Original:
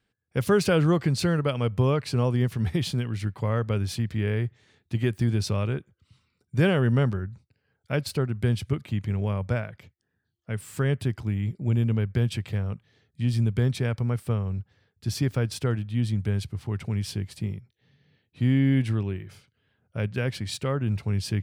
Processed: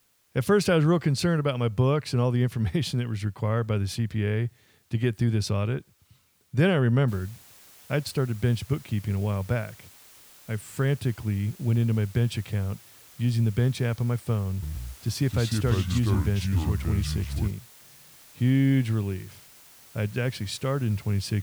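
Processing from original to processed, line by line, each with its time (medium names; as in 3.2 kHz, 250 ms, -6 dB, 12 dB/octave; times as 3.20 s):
7.08 s: noise floor step -67 dB -52 dB
14.50–17.51 s: ever faster or slower copies 125 ms, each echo -4 st, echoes 2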